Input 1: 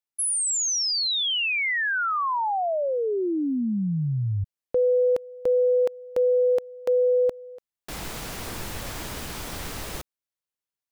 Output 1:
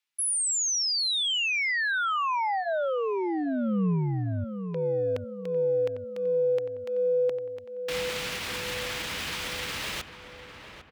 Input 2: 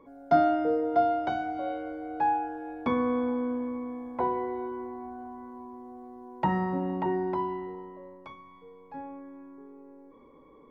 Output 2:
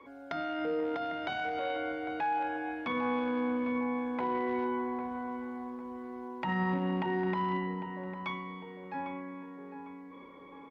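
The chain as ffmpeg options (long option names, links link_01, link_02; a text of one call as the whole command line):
ffmpeg -i in.wav -filter_complex "[0:a]acompressor=threshold=-28dB:ratio=3:attack=0.2:release=69:knee=1:detection=rms,equalizer=frequency=2700:width_type=o:width=2.4:gain=15,alimiter=limit=-22.5dB:level=0:latency=1:release=129,asplit=2[link_01][link_02];[link_02]adelay=801,lowpass=frequency=1800:poles=1,volume=-9dB,asplit=2[link_03][link_04];[link_04]adelay=801,lowpass=frequency=1800:poles=1,volume=0.49,asplit=2[link_05][link_06];[link_06]adelay=801,lowpass=frequency=1800:poles=1,volume=0.49,asplit=2[link_07][link_08];[link_08]adelay=801,lowpass=frequency=1800:poles=1,volume=0.49,asplit=2[link_09][link_10];[link_10]adelay=801,lowpass=frequency=1800:poles=1,volume=0.49,asplit=2[link_11][link_12];[link_12]adelay=801,lowpass=frequency=1800:poles=1,volume=0.49[link_13];[link_03][link_05][link_07][link_09][link_11][link_13]amix=inputs=6:normalize=0[link_14];[link_01][link_14]amix=inputs=2:normalize=0,adynamicequalizer=threshold=0.00355:dfrequency=180:dqfactor=2.5:tfrequency=180:tqfactor=2.5:attack=5:release=100:ratio=0.375:range=3:mode=boostabove:tftype=bell,highpass=46,bandreject=frequency=710:width=18,volume=-1.5dB" out.wav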